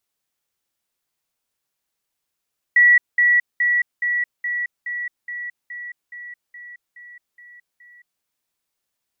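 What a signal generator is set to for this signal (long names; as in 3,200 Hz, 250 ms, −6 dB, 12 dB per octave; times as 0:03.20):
level staircase 1,940 Hz −9 dBFS, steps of −3 dB, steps 13, 0.22 s 0.20 s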